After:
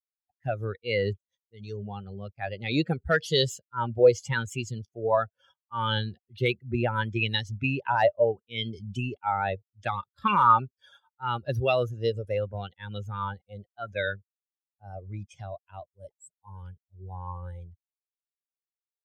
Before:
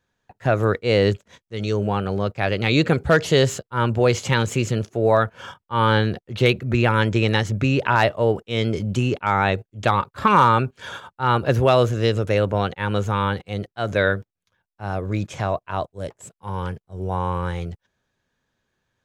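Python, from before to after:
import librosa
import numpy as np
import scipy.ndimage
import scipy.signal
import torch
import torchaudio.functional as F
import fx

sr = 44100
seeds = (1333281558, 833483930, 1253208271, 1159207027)

y = fx.bin_expand(x, sr, power=2.0)
y = fx.bell_lfo(y, sr, hz=0.74, low_hz=530.0, high_hz=4000.0, db=11)
y = F.gain(torch.from_numpy(y), -5.5).numpy()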